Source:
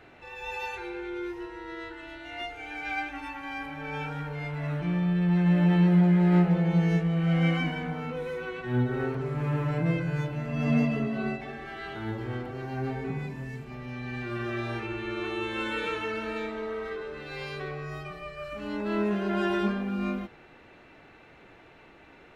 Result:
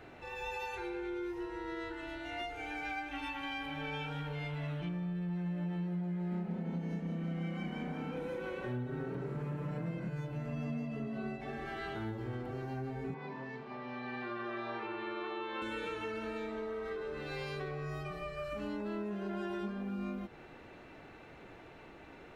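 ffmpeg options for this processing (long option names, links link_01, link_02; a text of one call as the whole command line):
ffmpeg -i in.wav -filter_complex "[0:a]asettb=1/sr,asplit=3[link_01][link_02][link_03];[link_01]atrim=end=3.114[link_04];[link_02]atrim=start=3.11:end=4.89,asetpts=PTS-STARTPTS,afade=type=in:duration=0.004:curve=qsin,afade=type=out:start_time=1.776:duration=0.004:curve=qsin,equalizer=frequency=3200:width=1.9:gain=11.5[link_05];[link_03]atrim=start=4.886[link_06];[link_04][link_05]acrossfade=duration=0.004:curve1=hsin:curve2=qsin[link_07];[link_07][link_06]acrossfade=duration=0.004:curve1=qsin:curve2=hsin,asettb=1/sr,asplit=3[link_08][link_09][link_10];[link_08]atrim=end=6.144[link_11];[link_09]atrim=start=6.14:end=10.09,asetpts=PTS-STARTPTS,afade=type=in:duration=0.004:curve=qsin,afade=type=out:start_time=3.946:duration=0.004:curve=qsin,asplit=9[link_12][link_13][link_14][link_15][link_16][link_17][link_18][link_19][link_20];[link_13]adelay=176,afreqshift=31,volume=-8dB[link_21];[link_14]adelay=352,afreqshift=62,volume=-12.4dB[link_22];[link_15]adelay=528,afreqshift=93,volume=-16.9dB[link_23];[link_16]adelay=704,afreqshift=124,volume=-21.3dB[link_24];[link_17]adelay=880,afreqshift=155,volume=-25.7dB[link_25];[link_18]adelay=1056,afreqshift=186,volume=-30.2dB[link_26];[link_19]adelay=1232,afreqshift=217,volume=-34.6dB[link_27];[link_20]adelay=1408,afreqshift=248,volume=-39.1dB[link_28];[link_12][link_21][link_22][link_23][link_24][link_25][link_26][link_27][link_28]amix=inputs=9:normalize=0,atrim=end_sample=174195[link_29];[link_10]atrim=start=10.086[link_30];[link_11][link_29]acrossfade=duration=0.004:curve1=hsin:curve2=qsin[link_31];[link_31][link_30]acrossfade=duration=0.004:curve1=qsin:curve2=hsin,asettb=1/sr,asplit=3[link_32][link_33][link_34];[link_32]atrim=end=13.144[link_35];[link_33]atrim=start=13.14:end=15.62,asetpts=PTS-STARTPTS,afade=type=in:duration=0.004:curve=qsin,afade=type=out:start_time=2.476:duration=0.004:curve=qsin,highpass=310,equalizer=frequency=330:width_type=q:width=4:gain=-4,equalizer=frequency=1000:width_type=q:width=4:gain=8,equalizer=frequency=2600:width_type=q:width=4:gain=-4,lowpass=frequency=4300:width=0.5412,lowpass=frequency=4300:width=1.3066[link_36];[link_34]atrim=start=15.616[link_37];[link_35][link_36]acrossfade=duration=0.004:curve1=hsin:curve2=qsin[link_38];[link_38][link_37]acrossfade=duration=0.004:curve1=qsin:curve2=hsin,equalizer=frequency=2400:width=0.59:gain=-4,acompressor=threshold=-38dB:ratio=6,volume=1.5dB" out.wav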